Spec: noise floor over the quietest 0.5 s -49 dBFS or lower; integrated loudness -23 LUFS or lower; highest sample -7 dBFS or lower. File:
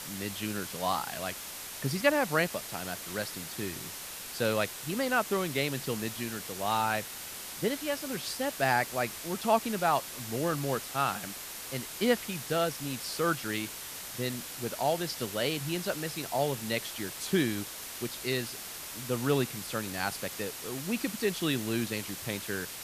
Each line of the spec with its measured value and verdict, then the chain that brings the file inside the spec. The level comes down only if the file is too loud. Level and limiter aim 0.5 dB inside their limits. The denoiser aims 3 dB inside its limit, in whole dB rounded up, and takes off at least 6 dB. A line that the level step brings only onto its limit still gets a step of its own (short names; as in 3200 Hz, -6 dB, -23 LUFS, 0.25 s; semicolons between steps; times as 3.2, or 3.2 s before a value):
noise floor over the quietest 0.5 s -42 dBFS: fail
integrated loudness -32.0 LUFS: OK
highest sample -11.5 dBFS: OK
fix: denoiser 10 dB, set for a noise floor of -42 dBFS